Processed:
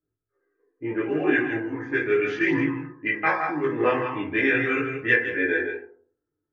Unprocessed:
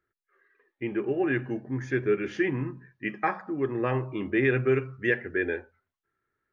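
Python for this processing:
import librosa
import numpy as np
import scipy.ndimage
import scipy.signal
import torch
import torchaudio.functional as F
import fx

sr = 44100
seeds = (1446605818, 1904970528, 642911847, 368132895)

p1 = fx.low_shelf(x, sr, hz=420.0, db=-8.5)
p2 = fx.rev_fdn(p1, sr, rt60_s=0.56, lf_ratio=1.05, hf_ratio=0.45, size_ms=20.0, drr_db=-1.5)
p3 = fx.env_lowpass(p2, sr, base_hz=370.0, full_db=-21.5)
p4 = fx.high_shelf(p3, sr, hz=3000.0, db=8.0)
p5 = p4 + fx.echo_single(p4, sr, ms=164, db=-8.0, dry=0)
p6 = fx.chorus_voices(p5, sr, voices=2, hz=0.39, base_ms=19, depth_ms=1.4, mix_pct=50)
p7 = fx.rider(p6, sr, range_db=10, speed_s=0.5)
y = p6 + (p7 * 10.0 ** (-0.5 / 20.0))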